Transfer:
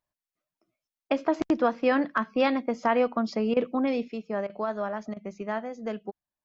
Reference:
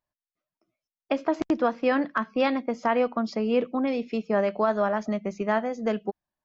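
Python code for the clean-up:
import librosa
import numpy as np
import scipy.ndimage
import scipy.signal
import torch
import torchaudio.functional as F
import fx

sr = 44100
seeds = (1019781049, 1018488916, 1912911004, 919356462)

y = fx.fix_interpolate(x, sr, at_s=(1.08, 3.54, 4.47, 5.14), length_ms=24.0)
y = fx.fix_level(y, sr, at_s=4.08, step_db=6.5)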